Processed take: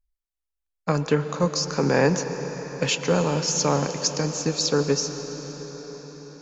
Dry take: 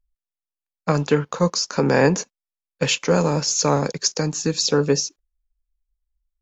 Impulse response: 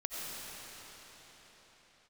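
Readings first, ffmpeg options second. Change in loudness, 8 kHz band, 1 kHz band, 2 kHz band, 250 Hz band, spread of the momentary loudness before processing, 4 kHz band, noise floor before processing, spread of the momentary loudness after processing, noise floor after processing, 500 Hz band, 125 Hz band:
-3.5 dB, n/a, -2.5 dB, -2.5 dB, -3.0 dB, 7 LU, -3.0 dB, under -85 dBFS, 15 LU, -84 dBFS, -2.5 dB, -2.5 dB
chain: -filter_complex "[0:a]asplit=2[a][b];[1:a]atrim=start_sample=2205,asetrate=33075,aresample=44100[c];[b][c]afir=irnorm=-1:irlink=0,volume=-11.5dB[d];[a][d]amix=inputs=2:normalize=0,volume=-5dB"

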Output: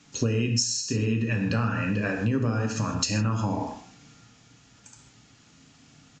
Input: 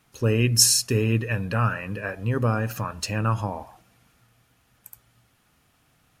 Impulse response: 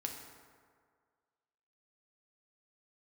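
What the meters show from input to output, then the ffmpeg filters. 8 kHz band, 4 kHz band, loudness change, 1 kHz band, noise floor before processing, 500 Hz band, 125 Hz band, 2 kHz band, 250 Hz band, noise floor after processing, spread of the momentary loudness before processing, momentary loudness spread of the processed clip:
-7.0 dB, -5.0 dB, -3.5 dB, -3.5 dB, -65 dBFS, -3.5 dB, -2.5 dB, -2.0 dB, +2.0 dB, -57 dBFS, 13 LU, 5 LU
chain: -filter_complex "[0:a]equalizer=f=210:w=0.68:g=14[a];[1:a]atrim=start_sample=2205,afade=t=out:st=0.21:d=0.01,atrim=end_sample=9702[b];[a][b]afir=irnorm=-1:irlink=0,acrossover=split=410[c][d];[d]crystalizer=i=6:c=0[e];[c][e]amix=inputs=2:normalize=0,acompressor=threshold=-22dB:ratio=8,aresample=16000,aresample=44100"

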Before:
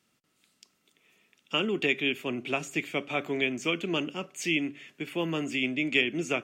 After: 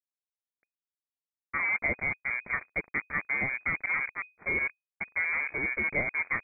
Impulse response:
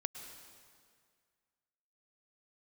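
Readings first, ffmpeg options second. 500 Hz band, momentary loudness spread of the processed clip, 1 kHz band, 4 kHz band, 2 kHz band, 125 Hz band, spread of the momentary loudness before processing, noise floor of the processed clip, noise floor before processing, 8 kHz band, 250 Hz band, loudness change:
-10.0 dB, 6 LU, -0.5 dB, under -40 dB, +3.5 dB, -6.0 dB, 7 LU, under -85 dBFS, -73 dBFS, under -35 dB, -13.5 dB, -0.5 dB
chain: -af "acrusher=bits=4:mix=0:aa=0.5,lowpass=f=2.1k:t=q:w=0.5098,lowpass=f=2.1k:t=q:w=0.6013,lowpass=f=2.1k:t=q:w=0.9,lowpass=f=2.1k:t=q:w=2.563,afreqshift=-2500"

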